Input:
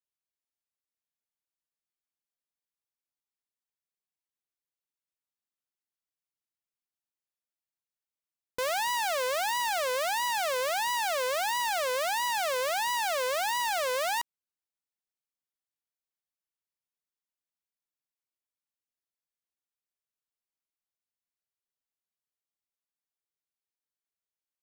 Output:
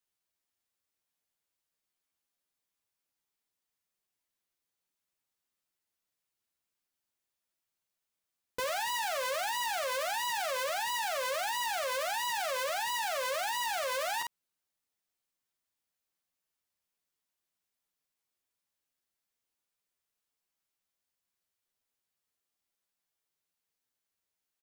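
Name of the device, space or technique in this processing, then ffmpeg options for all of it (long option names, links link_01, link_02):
stacked limiters: -af "aecho=1:1:11|54:0.668|0.376,alimiter=level_in=1dB:limit=-24dB:level=0:latency=1,volume=-1dB,alimiter=level_in=7dB:limit=-24dB:level=0:latency=1:release=125,volume=-7dB,volume=4.5dB"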